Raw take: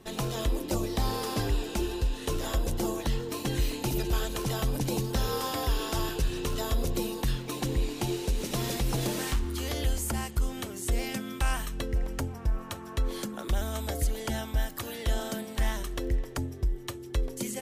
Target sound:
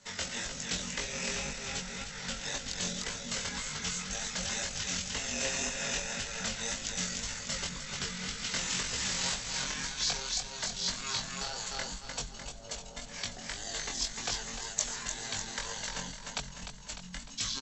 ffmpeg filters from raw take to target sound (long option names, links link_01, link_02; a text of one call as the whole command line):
ffmpeg -i in.wav -filter_complex "[0:a]acrossover=split=110|4500[link_01][link_02][link_03];[link_01]acontrast=53[link_04];[link_04][link_02][link_03]amix=inputs=3:normalize=0,equalizer=frequency=640:width_type=o:width=0.33:gain=-13.5,asetrate=22696,aresample=44100,atempo=1.94306,aecho=1:1:301|602|903|1204|1505|1806:0.631|0.309|0.151|0.0742|0.0364|0.0178,acompressor=threshold=-22dB:ratio=6,flanger=delay=19:depth=3.9:speed=1.9,aemphasis=mode=production:type=riaa,volume=1.5dB" out.wav